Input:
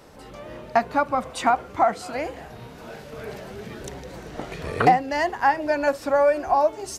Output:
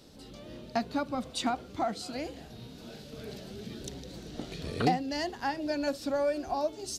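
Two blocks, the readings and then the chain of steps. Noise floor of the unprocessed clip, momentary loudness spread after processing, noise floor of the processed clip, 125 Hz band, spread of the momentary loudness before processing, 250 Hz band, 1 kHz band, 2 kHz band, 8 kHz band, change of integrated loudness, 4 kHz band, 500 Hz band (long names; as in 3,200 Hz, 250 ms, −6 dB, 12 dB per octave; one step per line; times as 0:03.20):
−43 dBFS, 16 LU, −49 dBFS, −4.5 dB, 20 LU, −2.5 dB, −13.0 dB, −12.5 dB, −3.5 dB, −11.0 dB, −0.5 dB, −10.0 dB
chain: graphic EQ with 10 bands 250 Hz +5 dB, 500 Hz −3 dB, 1,000 Hz −9 dB, 2,000 Hz −7 dB, 4,000 Hz +9 dB
level −5.5 dB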